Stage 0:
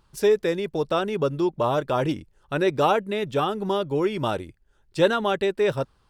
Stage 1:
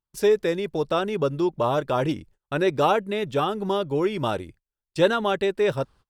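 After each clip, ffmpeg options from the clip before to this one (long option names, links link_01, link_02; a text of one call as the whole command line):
ffmpeg -i in.wav -af "agate=range=-30dB:threshold=-48dB:ratio=16:detection=peak" out.wav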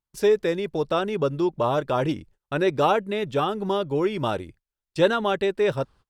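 ffmpeg -i in.wav -af "highshelf=frequency=9000:gain=-5" out.wav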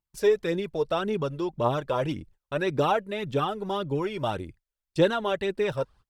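ffmpeg -i in.wav -af "aphaser=in_gain=1:out_gain=1:delay=2.2:decay=0.48:speed=1.8:type=triangular,volume=-4dB" out.wav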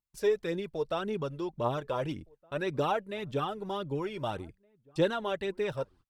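ffmpeg -i in.wav -filter_complex "[0:a]asplit=2[link_01][link_02];[link_02]adelay=1516,volume=-28dB,highshelf=frequency=4000:gain=-34.1[link_03];[link_01][link_03]amix=inputs=2:normalize=0,volume=-5.5dB" out.wav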